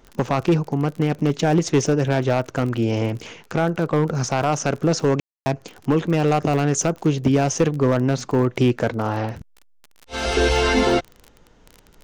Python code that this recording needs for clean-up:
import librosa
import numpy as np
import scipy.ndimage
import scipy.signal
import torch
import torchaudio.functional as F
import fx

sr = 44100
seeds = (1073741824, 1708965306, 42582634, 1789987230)

y = fx.fix_declick_ar(x, sr, threshold=6.5)
y = fx.fix_ambience(y, sr, seeds[0], print_start_s=11.13, print_end_s=11.63, start_s=5.2, end_s=5.46)